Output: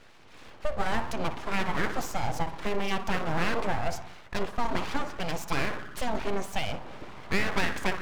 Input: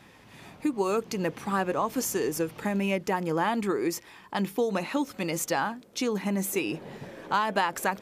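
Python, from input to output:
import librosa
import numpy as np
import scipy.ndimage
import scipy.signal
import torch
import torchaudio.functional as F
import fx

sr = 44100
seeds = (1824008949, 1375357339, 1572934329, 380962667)

y = fx.air_absorb(x, sr, metres=96.0)
y = fx.echo_banded(y, sr, ms=60, feedback_pct=76, hz=650.0, wet_db=-7.5)
y = np.abs(y)
y = F.gain(torch.from_numpy(y), 1.5).numpy()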